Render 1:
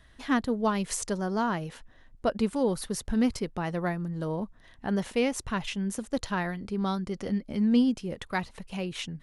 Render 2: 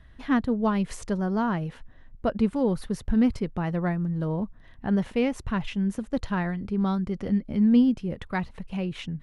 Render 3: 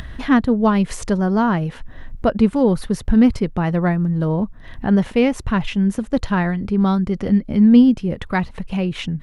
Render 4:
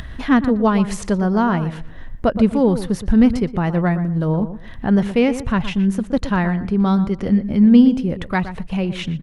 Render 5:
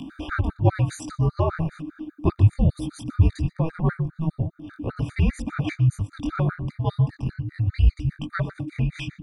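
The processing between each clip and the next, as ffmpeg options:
ffmpeg -i in.wav -af "bass=frequency=250:gain=7,treble=frequency=4000:gain=-11" out.wav
ffmpeg -i in.wav -af "acompressor=mode=upward:threshold=-30dB:ratio=2.5,volume=8.5dB" out.wav
ffmpeg -i in.wav -filter_complex "[0:a]asplit=2[link_01][link_02];[link_02]adelay=119,lowpass=frequency=2000:poles=1,volume=-11.5dB,asplit=2[link_03][link_04];[link_04]adelay=119,lowpass=frequency=2000:poles=1,volume=0.23,asplit=2[link_05][link_06];[link_06]adelay=119,lowpass=frequency=2000:poles=1,volume=0.23[link_07];[link_01][link_03][link_05][link_07]amix=inputs=4:normalize=0" out.wav
ffmpeg -i in.wav -af "afreqshift=-320,flanger=delay=19.5:depth=4.2:speed=2.8,afftfilt=real='re*gt(sin(2*PI*5*pts/sr)*(1-2*mod(floor(b*sr/1024/1200),2)),0)':imag='im*gt(sin(2*PI*5*pts/sr)*(1-2*mod(floor(b*sr/1024/1200),2)),0)':win_size=1024:overlap=0.75" out.wav

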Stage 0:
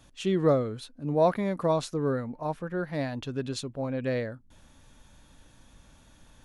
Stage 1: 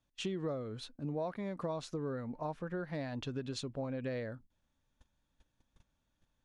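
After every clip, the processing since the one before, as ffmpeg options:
ffmpeg -i in.wav -af "lowpass=7400,agate=range=-22dB:threshold=-49dB:ratio=16:detection=peak,acompressor=threshold=-33dB:ratio=6,volume=-2dB" out.wav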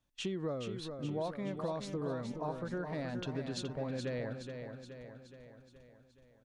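ffmpeg -i in.wav -af "aecho=1:1:422|844|1266|1688|2110|2532|2954:0.447|0.246|0.135|0.0743|0.0409|0.0225|0.0124" out.wav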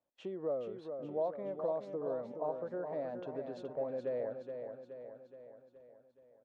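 ffmpeg -i in.wav -af "bandpass=frequency=580:width_type=q:width=2.2:csg=0,volume=5dB" out.wav

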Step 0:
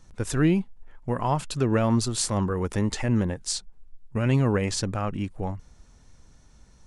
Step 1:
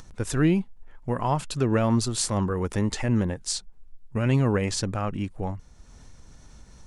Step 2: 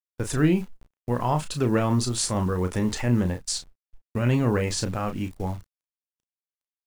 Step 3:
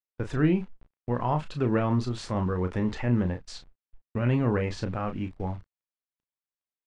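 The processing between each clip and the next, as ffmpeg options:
ffmpeg -i in.wav -af "acompressor=mode=upward:threshold=-39dB:ratio=2.5" out.wav
ffmpeg -i in.wav -filter_complex "[0:a]agate=range=-35dB:threshold=-36dB:ratio=16:detection=peak,acrusher=bits=9:dc=4:mix=0:aa=0.000001,asplit=2[link_01][link_02];[link_02]adelay=33,volume=-8dB[link_03];[link_01][link_03]amix=inputs=2:normalize=0" out.wav
ffmpeg -i in.wav -af "lowpass=2800,volume=-2.5dB" out.wav

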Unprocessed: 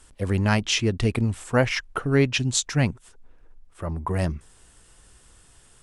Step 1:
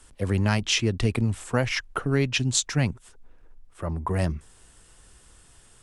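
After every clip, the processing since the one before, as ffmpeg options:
ffmpeg -i in.wav -filter_complex "[0:a]acrossover=split=120|3000[link_01][link_02][link_03];[link_02]acompressor=threshold=-22dB:ratio=2.5[link_04];[link_01][link_04][link_03]amix=inputs=3:normalize=0" out.wav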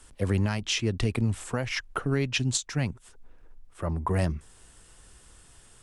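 ffmpeg -i in.wav -af "alimiter=limit=-15.5dB:level=0:latency=1:release=373" out.wav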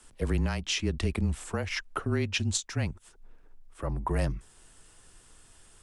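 ffmpeg -i in.wav -af "afreqshift=-27,volume=-2dB" out.wav

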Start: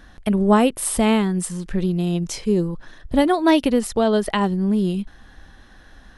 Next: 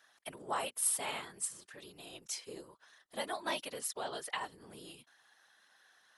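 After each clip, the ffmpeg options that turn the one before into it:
ffmpeg -i in.wav -af "highpass=780,afftfilt=real='hypot(re,im)*cos(2*PI*random(0))':imag='hypot(re,im)*sin(2*PI*random(1))':win_size=512:overlap=0.75,aemphasis=mode=production:type=cd,volume=-8.5dB" out.wav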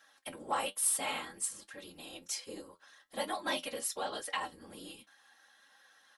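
ffmpeg -i in.wav -filter_complex "[0:a]aecho=1:1:3.7:0.53,asplit=2[link_01][link_02];[link_02]asoftclip=type=tanh:threshold=-31.5dB,volume=-7.5dB[link_03];[link_01][link_03]amix=inputs=2:normalize=0,flanger=delay=9.3:depth=3.5:regen=57:speed=1.2:shape=triangular,volume=3dB" out.wav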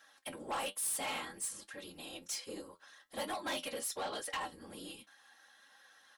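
ffmpeg -i in.wav -af "asoftclip=type=tanh:threshold=-34dB,volume=1dB" out.wav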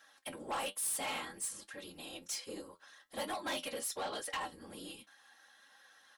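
ffmpeg -i in.wav -af anull out.wav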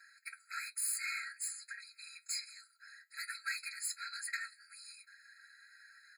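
ffmpeg -i in.wav -af "afftfilt=real='re*eq(mod(floor(b*sr/1024/1300),2),1)':imag='im*eq(mod(floor(b*sr/1024/1300),2),1)':win_size=1024:overlap=0.75,volume=4.5dB" out.wav

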